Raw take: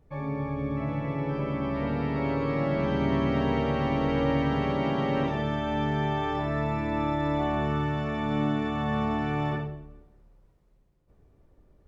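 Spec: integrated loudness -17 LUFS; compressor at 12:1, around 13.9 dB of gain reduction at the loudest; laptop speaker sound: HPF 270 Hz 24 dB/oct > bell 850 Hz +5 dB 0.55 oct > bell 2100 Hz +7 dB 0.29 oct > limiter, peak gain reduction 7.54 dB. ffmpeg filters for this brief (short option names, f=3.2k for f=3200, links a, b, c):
-af "acompressor=threshold=-36dB:ratio=12,highpass=f=270:w=0.5412,highpass=f=270:w=1.3066,equalizer=f=850:t=o:w=0.55:g=5,equalizer=f=2.1k:t=o:w=0.29:g=7,volume=27dB,alimiter=limit=-8.5dB:level=0:latency=1"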